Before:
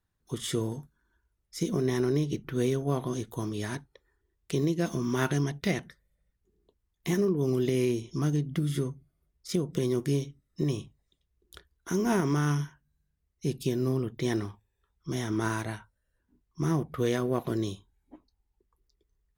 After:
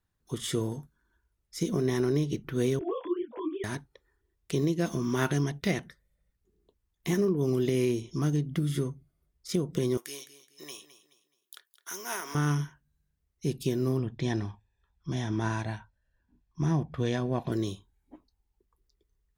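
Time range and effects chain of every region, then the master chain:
0:02.79–0:03.64: three sine waves on the formant tracks + low-shelf EQ 190 Hz +8 dB + micro pitch shift up and down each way 60 cents
0:09.97–0:12.35: Bessel high-pass filter 1,200 Hz + high-shelf EQ 11,000 Hz +11.5 dB + repeating echo 212 ms, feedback 33%, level −14 dB
0:13.99–0:17.52: low-pass filter 5,400 Hz + dynamic equaliser 1,400 Hz, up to −4 dB, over −45 dBFS, Q 1.2 + comb filter 1.2 ms, depth 43%
whole clip: no processing

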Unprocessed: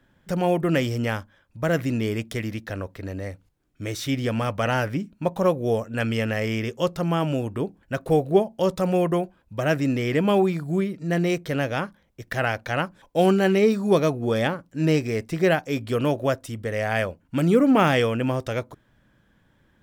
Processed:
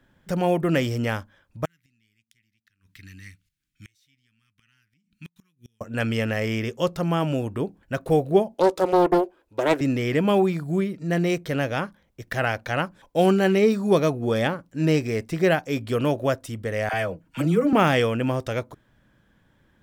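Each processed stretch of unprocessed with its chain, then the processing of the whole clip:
0:01.65–0:05.81: Chebyshev band-stop filter 180–2,200 Hz + low-shelf EQ 390 Hz −11.5 dB + gate with flip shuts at −30 dBFS, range −32 dB
0:08.54–0:09.81: low shelf with overshoot 250 Hz −11.5 dB, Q 3 + highs frequency-modulated by the lows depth 0.46 ms
0:16.89–0:17.73: comb filter 6.3 ms, depth 57% + downward compressor 1.5 to 1, threshold −24 dBFS + all-pass dispersion lows, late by 47 ms, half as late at 530 Hz
whole clip: no processing

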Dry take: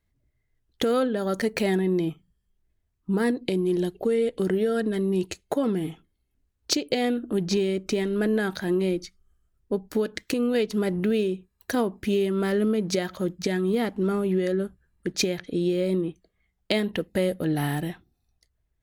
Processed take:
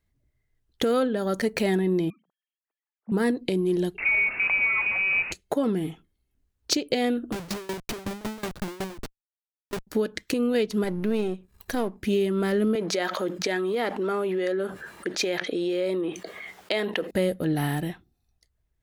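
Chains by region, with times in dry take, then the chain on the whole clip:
0:02.10–0:03.12: three sine waves on the formant tracks + high-pass filter 270 Hz
0:03.98–0:05.32: linear delta modulator 32 kbit/s, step −28 dBFS + voice inversion scrambler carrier 2,700 Hz + highs frequency-modulated by the lows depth 0.22 ms
0:07.32–0:09.87: comparator with hysteresis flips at −34.5 dBFS + tremolo with a ramp in dB decaying 5.4 Hz, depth 21 dB
0:10.84–0:11.97: gain on one half-wave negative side −7 dB + upward compression, threshold −37 dBFS
0:12.75–0:17.11: high-pass filter 470 Hz + high-shelf EQ 5,200 Hz −9.5 dB + envelope flattener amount 70%
whole clip: no processing

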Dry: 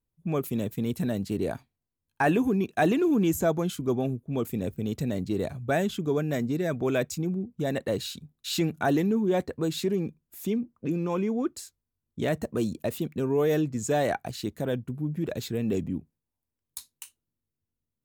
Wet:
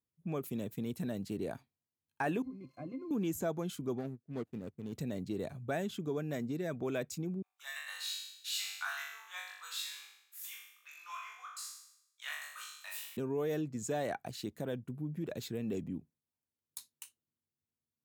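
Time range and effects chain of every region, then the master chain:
0:02.42–0:03.11: spike at every zero crossing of −29 dBFS + resonances in every octave C, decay 0.12 s + downward compressor 3 to 1, threshold −31 dBFS
0:03.98–0:04.93: running median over 41 samples + expander for the loud parts 2.5 to 1, over −37 dBFS
0:07.42–0:13.17: Butterworth high-pass 1,100 Hz + flutter between parallel walls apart 3.5 metres, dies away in 0.76 s
whole clip: high-pass filter 100 Hz; downward compressor 1.5 to 1, threshold −31 dBFS; level −6.5 dB

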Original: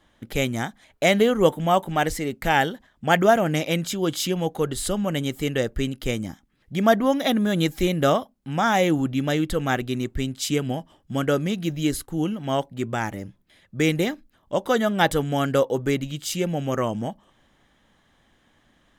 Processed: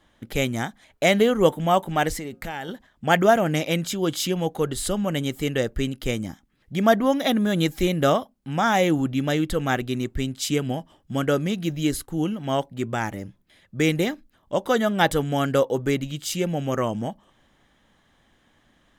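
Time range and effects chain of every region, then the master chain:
0:02.18–0:02.69: hum removal 178 Hz, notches 9 + downward compressor 8 to 1, threshold −28 dBFS
whole clip: no processing

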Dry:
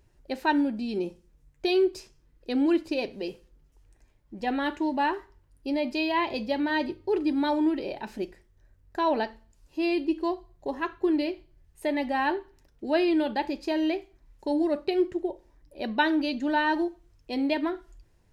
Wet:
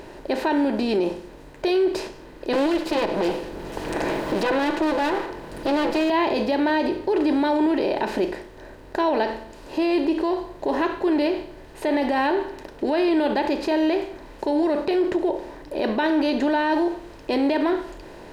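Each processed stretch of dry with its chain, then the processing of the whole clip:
0:02.53–0:06.10: lower of the sound and its delayed copy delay 6 ms + multiband upward and downward compressor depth 100%
whole clip: compressor on every frequency bin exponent 0.6; parametric band 520 Hz +5.5 dB 1.8 octaves; brickwall limiter −17 dBFS; level +3 dB

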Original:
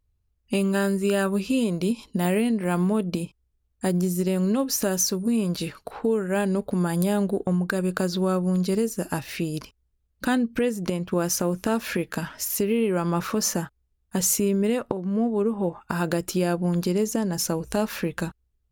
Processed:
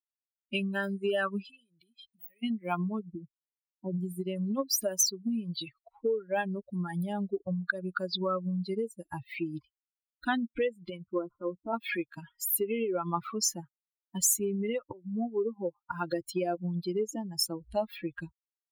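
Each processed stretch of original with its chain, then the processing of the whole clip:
0:01.45–0:02.43: high-shelf EQ 3,900 Hz +10.5 dB + downward compressor 8 to 1, threshold −33 dBFS
0:02.99–0:03.98: low-pass filter 1,100 Hz 24 dB per octave + dynamic equaliser 680 Hz, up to −6 dB, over −44 dBFS, Q 3.1
0:11.06–0:11.73: variable-slope delta modulation 64 kbit/s + Chebyshev low-pass with heavy ripple 1,500 Hz, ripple 3 dB
whole clip: spectral dynamics exaggerated over time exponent 3; downward compressor, threshold −28 dBFS; low-shelf EQ 300 Hz −10 dB; level +6 dB

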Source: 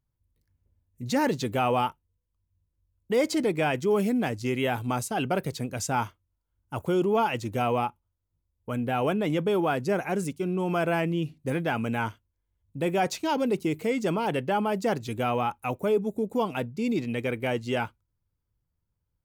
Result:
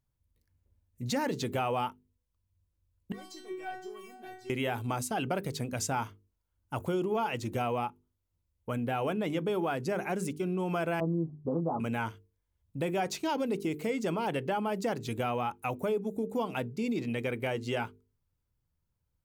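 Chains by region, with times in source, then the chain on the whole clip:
0:03.12–0:04.50: leveller curve on the samples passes 1 + stiff-string resonator 370 Hz, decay 0.52 s, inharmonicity 0.002
0:11.00–0:11.80: Butterworth low-pass 1,200 Hz 96 dB per octave + double-tracking delay 12 ms −2.5 dB
whole clip: mains-hum notches 50/100/150/200/250/300/350/400/450 Hz; downward compressor 2.5 to 1, threshold −30 dBFS

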